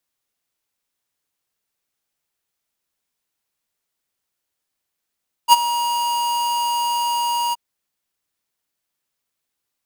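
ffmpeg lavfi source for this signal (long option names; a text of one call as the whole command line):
ffmpeg -f lavfi -i "aevalsrc='0.447*(2*lt(mod(951*t,1),0.5)-1)':duration=2.074:sample_rate=44100,afade=type=in:duration=0.047,afade=type=out:start_time=0.047:duration=0.026:silence=0.2,afade=type=out:start_time=2.05:duration=0.024" out.wav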